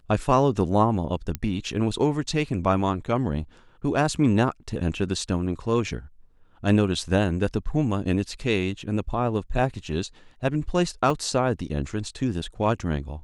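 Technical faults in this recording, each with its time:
0:01.35: click −13 dBFS
0:11.10: drop-out 3.3 ms

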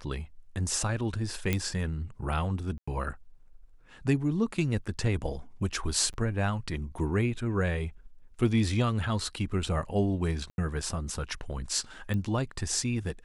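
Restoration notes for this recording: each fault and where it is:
0:01.53: click −13 dBFS
0:02.78–0:02.88: drop-out 95 ms
0:06.13–0:06.14: drop-out 8.5 ms
0:10.50–0:10.58: drop-out 81 ms
0:12.14: click −22 dBFS

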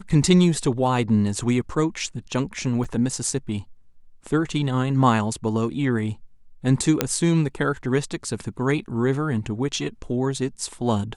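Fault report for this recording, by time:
0:02.84–0:02.85: drop-out 5.9 ms
0:07.01: click −3 dBFS

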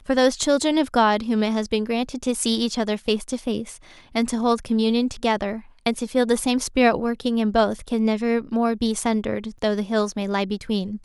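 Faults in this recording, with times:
0:09.58: drop-out 4.9 ms

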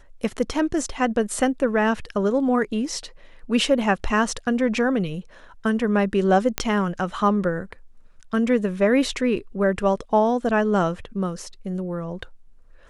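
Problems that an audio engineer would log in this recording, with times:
0:06.58: click −4 dBFS

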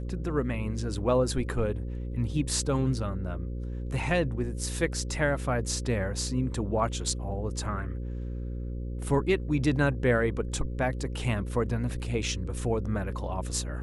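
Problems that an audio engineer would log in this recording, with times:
mains buzz 60 Hz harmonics 9 −34 dBFS

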